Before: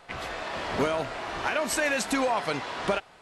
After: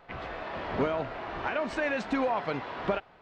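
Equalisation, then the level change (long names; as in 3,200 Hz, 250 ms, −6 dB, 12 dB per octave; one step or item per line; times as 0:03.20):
head-to-tape spacing loss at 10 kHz 43 dB
high-shelf EQ 2,400 Hz +8.5 dB
0.0 dB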